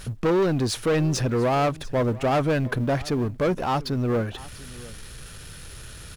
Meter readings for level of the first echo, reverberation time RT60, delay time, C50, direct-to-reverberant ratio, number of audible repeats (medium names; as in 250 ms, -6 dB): -20.0 dB, no reverb, 694 ms, no reverb, no reverb, 1